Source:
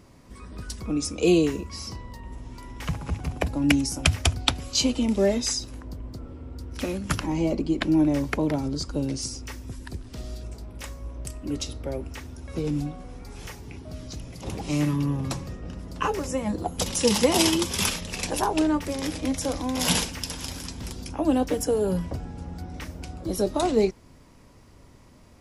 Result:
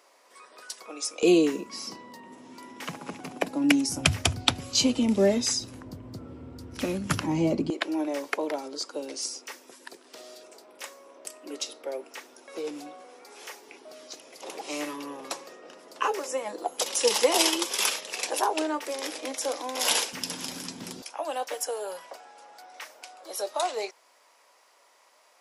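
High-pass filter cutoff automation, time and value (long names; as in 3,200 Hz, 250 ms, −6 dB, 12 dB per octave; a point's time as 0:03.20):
high-pass filter 24 dB per octave
510 Hz
from 0:01.23 220 Hz
from 0:03.89 96 Hz
from 0:07.70 400 Hz
from 0:20.13 170 Hz
from 0:21.02 600 Hz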